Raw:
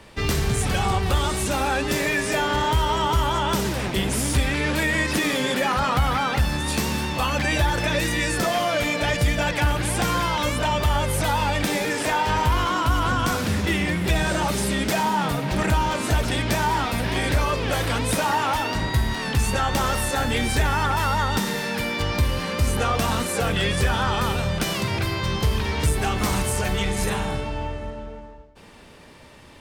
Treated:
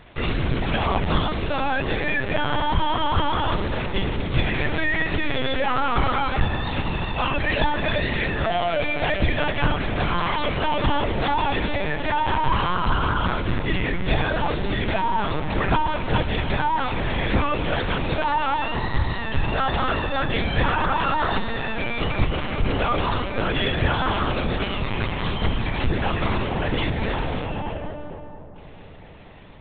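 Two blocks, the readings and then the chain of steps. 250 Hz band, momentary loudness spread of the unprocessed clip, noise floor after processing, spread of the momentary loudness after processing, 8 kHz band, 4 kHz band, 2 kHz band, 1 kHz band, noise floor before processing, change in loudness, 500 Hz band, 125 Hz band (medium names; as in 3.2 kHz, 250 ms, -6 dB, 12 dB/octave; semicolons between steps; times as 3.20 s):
-1.0 dB, 3 LU, -37 dBFS, 4 LU, under -40 dB, -2.0 dB, -0.5 dB, +0.5 dB, -42 dBFS, -1.0 dB, 0.0 dB, -1.5 dB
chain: LPC vocoder at 8 kHz pitch kept; filtered feedback delay 231 ms, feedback 83%, low-pass 2 kHz, level -16.5 dB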